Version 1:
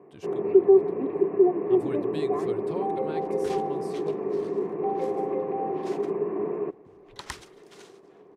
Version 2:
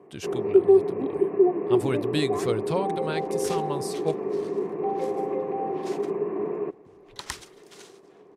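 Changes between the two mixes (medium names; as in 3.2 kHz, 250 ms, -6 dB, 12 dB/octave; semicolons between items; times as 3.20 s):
speech +10.0 dB; master: add treble shelf 3.6 kHz +7 dB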